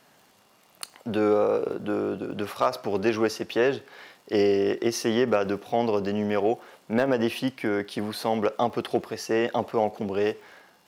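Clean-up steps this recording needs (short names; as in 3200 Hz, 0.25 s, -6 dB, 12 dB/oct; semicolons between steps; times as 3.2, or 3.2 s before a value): clip repair -11.5 dBFS; de-click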